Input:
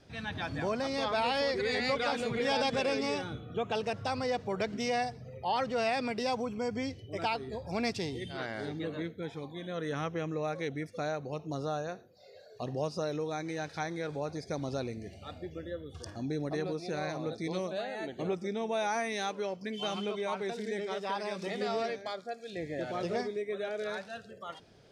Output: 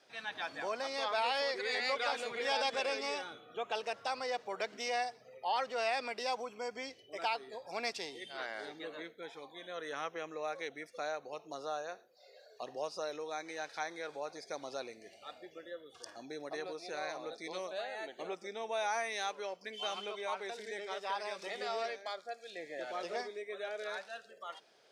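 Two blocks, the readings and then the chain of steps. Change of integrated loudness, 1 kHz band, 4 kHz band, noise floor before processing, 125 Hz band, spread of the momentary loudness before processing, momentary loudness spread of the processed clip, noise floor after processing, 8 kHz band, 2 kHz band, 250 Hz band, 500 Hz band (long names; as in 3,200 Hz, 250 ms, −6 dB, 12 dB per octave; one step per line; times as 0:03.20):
−4.5 dB, −2.5 dB, −1.5 dB, −54 dBFS, −24.5 dB, 10 LU, 13 LU, −62 dBFS, −1.5 dB, −1.5 dB, −15.0 dB, −5.5 dB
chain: high-pass filter 580 Hz 12 dB per octave
level −1.5 dB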